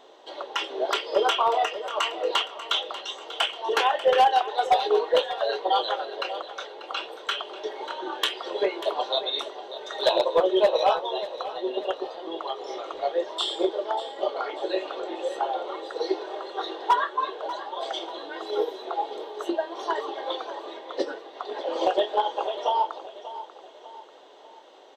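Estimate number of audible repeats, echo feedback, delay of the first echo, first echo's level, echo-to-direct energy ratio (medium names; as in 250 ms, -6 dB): 3, 43%, 590 ms, -14.0 dB, -13.0 dB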